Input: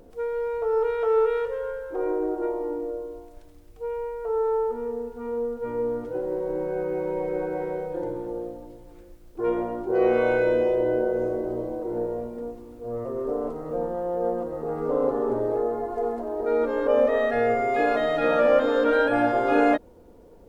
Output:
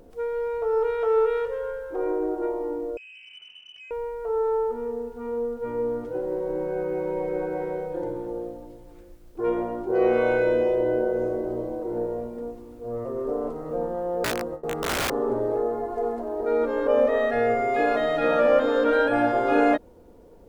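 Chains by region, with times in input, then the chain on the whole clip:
0:02.97–0:03.91: downward compressor 10 to 1, threshold −43 dBFS + voice inversion scrambler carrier 3,000 Hz + saturating transformer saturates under 1,500 Hz
0:14.24–0:15.11: noise gate with hold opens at −22 dBFS, closes at −29 dBFS + wrap-around overflow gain 21 dB
whole clip: no processing

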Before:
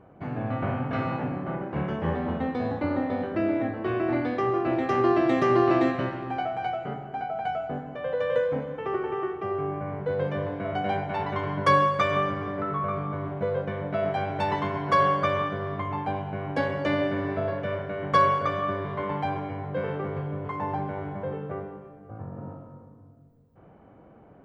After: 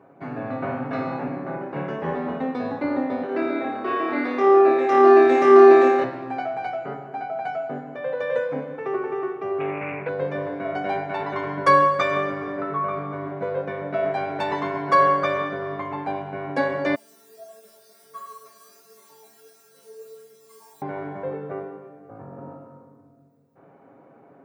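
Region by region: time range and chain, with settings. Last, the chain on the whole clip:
0:03.26–0:06.04: high-pass filter 280 Hz + flutter between parallel walls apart 4.8 metres, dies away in 0.95 s
0:09.60–0:10.09: low-pass with resonance 2,400 Hz, resonance Q 14 + highs frequency-modulated by the lows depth 0.2 ms
0:16.95–0:20.82: spike at every zero crossing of −22.5 dBFS + stiff-string resonator 220 Hz, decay 0.8 s, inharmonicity 0.002 + flanger 1.5 Hz, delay 3.9 ms, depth 6.1 ms, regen +52%
whole clip: high-pass filter 220 Hz 12 dB per octave; notch filter 3,100 Hz, Q 6.4; comb filter 7.3 ms, depth 44%; level +2 dB

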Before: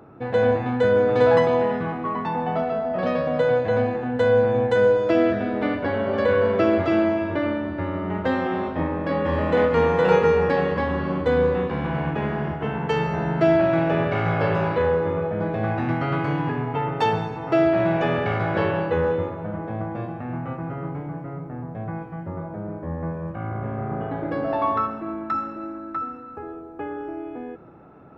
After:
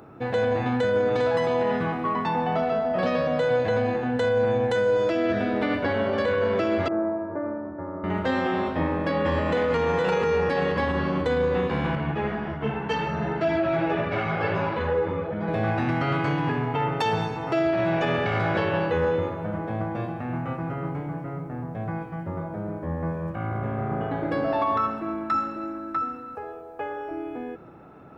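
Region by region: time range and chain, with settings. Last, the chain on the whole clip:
0:06.88–0:08.04: Gaussian smoothing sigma 8.3 samples + spectral tilt +3.5 dB per octave
0:11.95–0:15.48: high-frequency loss of the air 86 metres + string-ensemble chorus
0:26.35–0:27.11: low shelf with overshoot 410 Hz −6 dB, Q 3 + notch filter 1,300 Hz, Q 21
whole clip: high-shelf EQ 3,100 Hz +9.5 dB; brickwall limiter −15.5 dBFS

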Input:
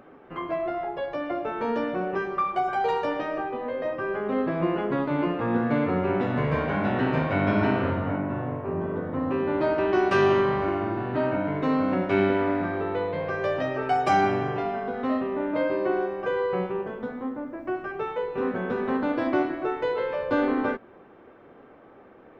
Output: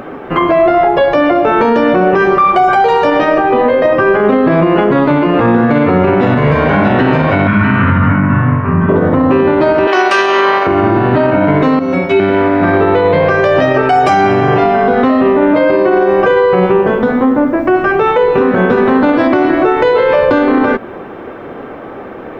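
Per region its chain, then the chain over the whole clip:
0:07.47–0:08.89: Chebyshev low-pass filter 2,000 Hz + flat-topped bell 510 Hz −14.5 dB
0:09.87–0:10.67: high-pass filter 440 Hz + spectral tilt +2 dB per octave
0:11.79–0:12.20: high-shelf EQ 4,300 Hz +7 dB + stiff-string resonator 81 Hz, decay 0.43 s, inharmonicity 0.03
whole clip: downward compressor, threshold −26 dBFS; boost into a limiter +24.5 dB; level −1 dB

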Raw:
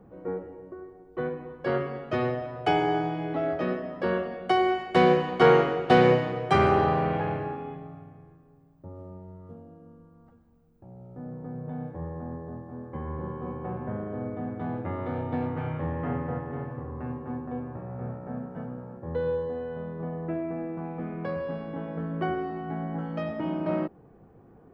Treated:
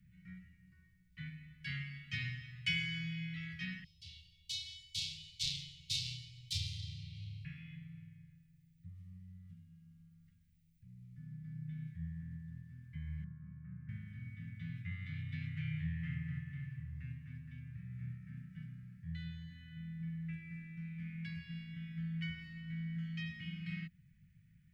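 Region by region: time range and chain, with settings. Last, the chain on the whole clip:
0:03.84–0:07.45: phase distortion by the signal itself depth 0.2 ms + elliptic band-stop filter 100–3,900 Hz + double-tracking delay 30 ms −6 dB
0:13.24–0:13.89: Chebyshev low-pass filter 1,300 Hz, order 3 + low-shelf EQ 320 Hz −5 dB
whole clip: Chebyshev band-stop filter 170–2,000 Hz, order 4; bass and treble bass −8 dB, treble 0 dB; level +1.5 dB

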